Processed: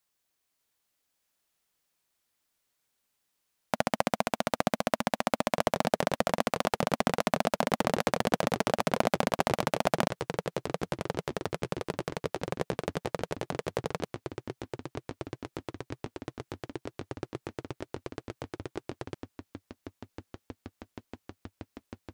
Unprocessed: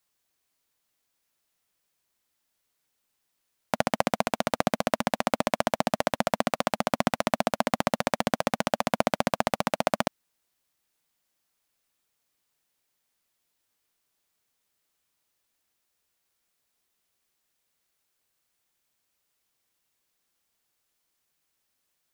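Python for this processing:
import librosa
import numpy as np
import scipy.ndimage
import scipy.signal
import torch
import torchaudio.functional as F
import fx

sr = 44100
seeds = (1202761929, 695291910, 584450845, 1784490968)

y = fx.echo_pitch(x, sr, ms=594, semitones=-5, count=3, db_per_echo=-6.0)
y = y * librosa.db_to_amplitude(-2.5)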